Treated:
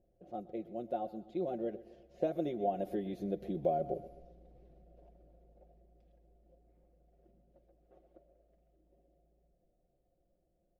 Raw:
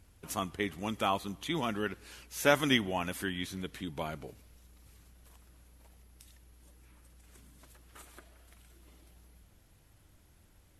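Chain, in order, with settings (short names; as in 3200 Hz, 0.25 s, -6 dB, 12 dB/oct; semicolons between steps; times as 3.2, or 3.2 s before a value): Doppler pass-by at 3.88, 33 m/s, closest 28 m; comb 5.6 ms, depth 72%; feedback echo 0.126 s, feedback 47%, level -19 dB; compressor 6:1, threshold -35 dBFS, peak gain reduction 8.5 dB; EQ curve 170 Hz 0 dB, 680 Hz +14 dB, 960 Hz -17 dB; low-pass opened by the level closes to 2900 Hz, open at -37.5 dBFS; bell 8300 Hz -14.5 dB 0.3 oct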